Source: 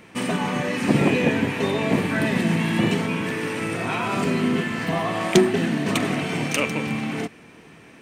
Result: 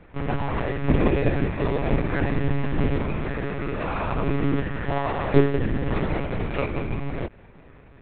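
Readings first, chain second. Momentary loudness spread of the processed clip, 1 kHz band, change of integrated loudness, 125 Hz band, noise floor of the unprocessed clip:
8 LU, −2.5 dB, −3.0 dB, +1.5 dB, −48 dBFS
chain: running median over 15 samples
one-pitch LPC vocoder at 8 kHz 140 Hz

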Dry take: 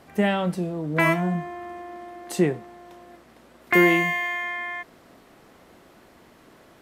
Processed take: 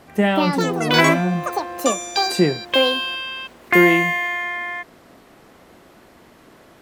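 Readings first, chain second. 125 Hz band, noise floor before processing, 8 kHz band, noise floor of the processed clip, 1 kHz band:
+4.0 dB, −54 dBFS, +13.0 dB, −50 dBFS, +7.0 dB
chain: delay with pitch and tempo change per echo 250 ms, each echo +7 semitones, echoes 3
level +4 dB

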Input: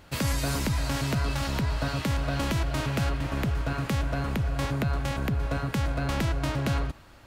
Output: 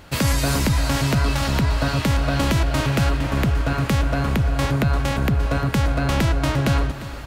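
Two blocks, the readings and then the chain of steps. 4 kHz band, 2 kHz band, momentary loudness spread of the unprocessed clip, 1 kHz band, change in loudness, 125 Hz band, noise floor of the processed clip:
+7.5 dB, +7.5 dB, 2 LU, +7.5 dB, +8.0 dB, +8.0 dB, −32 dBFS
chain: reversed playback
upward compression, threshold −34 dBFS
reversed playback
single-tap delay 350 ms −15 dB
level +7.5 dB

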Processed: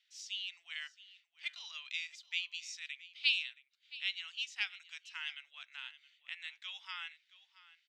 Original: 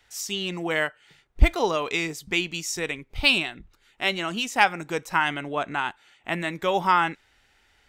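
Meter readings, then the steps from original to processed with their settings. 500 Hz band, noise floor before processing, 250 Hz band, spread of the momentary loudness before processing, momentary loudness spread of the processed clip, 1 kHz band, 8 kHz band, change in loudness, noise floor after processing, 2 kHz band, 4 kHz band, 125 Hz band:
below −40 dB, −63 dBFS, below −40 dB, 9 LU, 15 LU, −32.5 dB, −17.5 dB, −14.5 dB, −77 dBFS, −14.0 dB, −9.0 dB, below −40 dB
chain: four-pole ladder high-pass 2,400 Hz, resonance 25%
high-frequency loss of the air 150 metres
on a send: single-tap delay 672 ms −18 dB
on the sum: level −1 dB

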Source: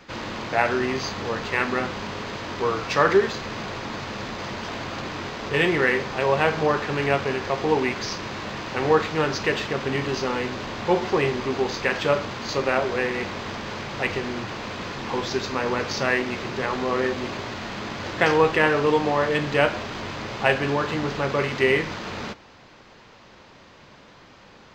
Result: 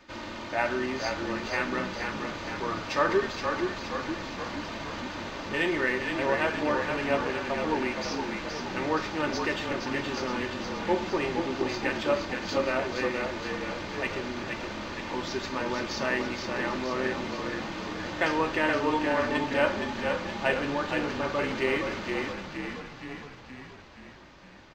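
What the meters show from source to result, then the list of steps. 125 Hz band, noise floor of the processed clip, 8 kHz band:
−9.0 dB, −47 dBFS, −5.0 dB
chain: comb filter 3.3 ms, depth 53%
on a send: echo with shifted repeats 470 ms, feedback 59%, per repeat −35 Hz, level −5 dB
on the sum: level −7.5 dB

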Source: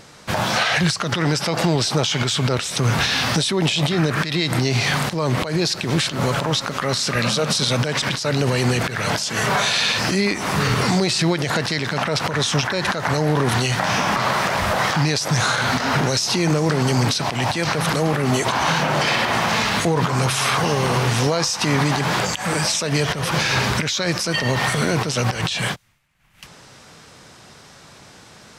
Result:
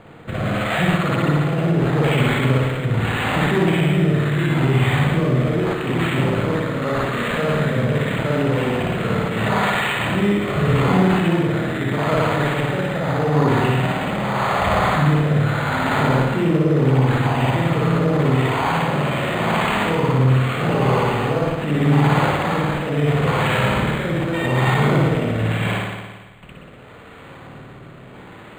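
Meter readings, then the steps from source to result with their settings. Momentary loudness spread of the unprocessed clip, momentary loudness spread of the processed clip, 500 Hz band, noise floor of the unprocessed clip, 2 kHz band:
3 LU, 5 LU, +2.5 dB, −46 dBFS, −1.5 dB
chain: Bessel low-pass filter 7,600 Hz
notch filter 1,600 Hz, Q 12
brickwall limiter −16.5 dBFS, peak gain reduction 8.5 dB
rotating-speaker cabinet horn 0.8 Hz
spring reverb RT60 1.4 s, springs 54 ms, chirp 20 ms, DRR −5 dB
linearly interpolated sample-rate reduction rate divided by 8×
level +3.5 dB

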